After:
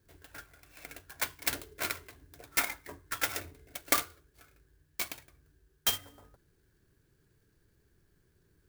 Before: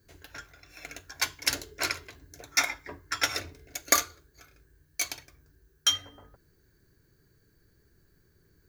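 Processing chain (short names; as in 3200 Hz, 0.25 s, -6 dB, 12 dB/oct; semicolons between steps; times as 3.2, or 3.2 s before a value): clock jitter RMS 0.049 ms; gain -4 dB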